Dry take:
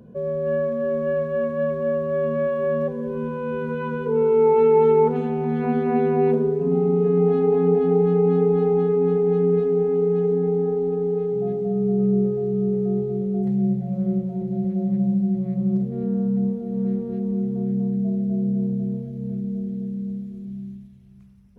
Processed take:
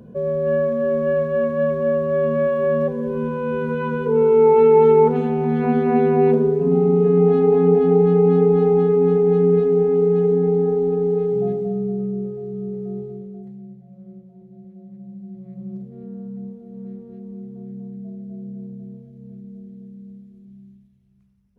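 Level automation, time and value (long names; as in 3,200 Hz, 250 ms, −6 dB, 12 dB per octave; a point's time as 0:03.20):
0:11.44 +3.5 dB
0:12.14 −6.5 dB
0:13.05 −6.5 dB
0:13.66 −18.5 dB
0:14.99 −18.5 dB
0:15.61 −11 dB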